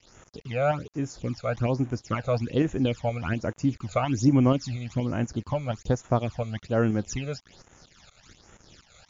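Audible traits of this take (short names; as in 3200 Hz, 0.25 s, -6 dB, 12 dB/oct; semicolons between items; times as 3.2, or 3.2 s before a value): tremolo saw up 4.2 Hz, depth 45%; a quantiser's noise floor 8-bit, dither none; phasing stages 12, 1.2 Hz, lowest notch 290–4500 Hz; MP3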